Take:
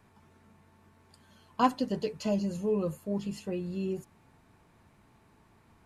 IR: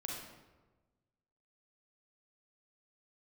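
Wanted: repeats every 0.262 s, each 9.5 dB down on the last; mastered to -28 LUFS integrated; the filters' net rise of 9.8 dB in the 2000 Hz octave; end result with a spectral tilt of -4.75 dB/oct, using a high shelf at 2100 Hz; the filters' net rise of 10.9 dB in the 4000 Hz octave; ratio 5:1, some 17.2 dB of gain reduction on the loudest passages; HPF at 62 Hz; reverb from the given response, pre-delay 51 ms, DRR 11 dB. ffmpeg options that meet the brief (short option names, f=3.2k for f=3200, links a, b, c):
-filter_complex "[0:a]highpass=62,equalizer=f=2k:t=o:g=8,highshelf=f=2.1k:g=6.5,equalizer=f=4k:t=o:g=5,acompressor=threshold=-36dB:ratio=5,aecho=1:1:262|524|786|1048:0.335|0.111|0.0365|0.012,asplit=2[a][b];[1:a]atrim=start_sample=2205,adelay=51[c];[b][c]afir=irnorm=-1:irlink=0,volume=-11dB[d];[a][d]amix=inputs=2:normalize=0,volume=11dB"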